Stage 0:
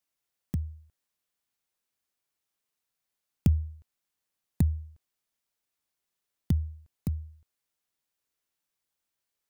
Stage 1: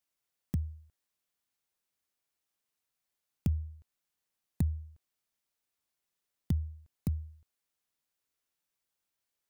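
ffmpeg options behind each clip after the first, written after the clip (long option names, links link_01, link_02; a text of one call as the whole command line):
ffmpeg -i in.wav -af "alimiter=limit=-17.5dB:level=0:latency=1:release=467,volume=-1.5dB" out.wav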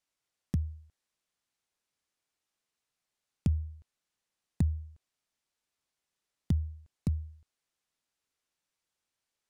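ffmpeg -i in.wav -af "lowpass=9000,volume=2dB" out.wav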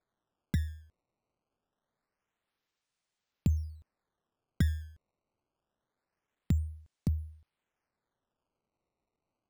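ffmpeg -i in.wav -af "acrusher=samples=15:mix=1:aa=0.000001:lfo=1:lforange=24:lforate=0.25" out.wav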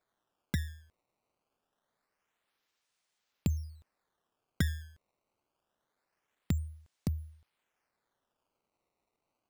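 ffmpeg -i in.wav -af "lowshelf=frequency=320:gain=-9,volume=5dB" out.wav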